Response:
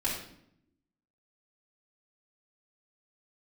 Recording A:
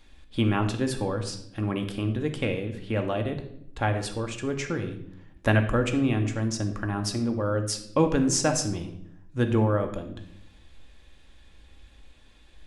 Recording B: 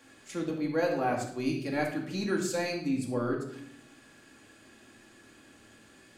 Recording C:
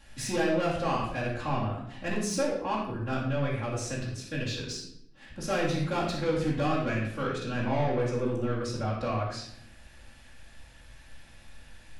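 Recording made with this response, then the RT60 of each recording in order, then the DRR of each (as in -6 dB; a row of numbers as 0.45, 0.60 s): C; 0.70, 0.70, 0.70 s; 4.5, -1.0, -7.5 dB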